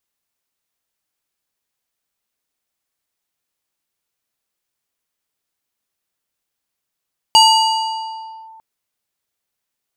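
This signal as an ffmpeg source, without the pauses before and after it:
ffmpeg -f lavfi -i "aevalsrc='0.596*pow(10,-3*t/2.13)*sin(2*PI*890*t+1.2*clip(1-t/1.14,0,1)*sin(2*PI*4.25*890*t))':duration=1.25:sample_rate=44100" out.wav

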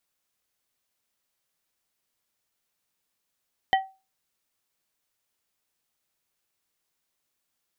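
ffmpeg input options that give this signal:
ffmpeg -f lavfi -i "aevalsrc='0.178*pow(10,-3*t/0.29)*sin(2*PI*768*t)+0.112*pow(10,-3*t/0.153)*sin(2*PI*1920*t)+0.0708*pow(10,-3*t/0.11)*sin(2*PI*3072*t)':duration=0.89:sample_rate=44100" out.wav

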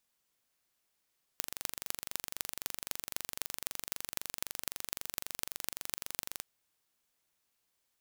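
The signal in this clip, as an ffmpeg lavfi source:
ffmpeg -f lavfi -i "aevalsrc='0.562*eq(mod(n,1853),0)*(0.5+0.5*eq(mod(n,11118),0))':duration=5.03:sample_rate=44100" out.wav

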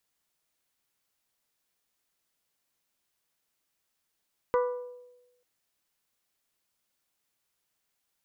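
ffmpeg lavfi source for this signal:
ffmpeg -f lavfi -i "aevalsrc='0.0891*pow(10,-3*t/1.04)*sin(2*PI*493*t)+0.0473*pow(10,-3*t/0.64)*sin(2*PI*986*t)+0.0251*pow(10,-3*t/0.563)*sin(2*PI*1183.2*t)+0.0133*pow(10,-3*t/0.482)*sin(2*PI*1479*t)+0.00708*pow(10,-3*t/0.394)*sin(2*PI*1972*t)':duration=0.89:sample_rate=44100" out.wav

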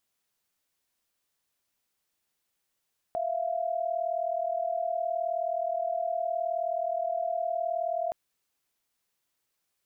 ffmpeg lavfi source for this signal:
ffmpeg -f lavfi -i "aevalsrc='0.0316*(sin(2*PI*659.26*t)+sin(2*PI*698.46*t))':duration=4.97:sample_rate=44100" out.wav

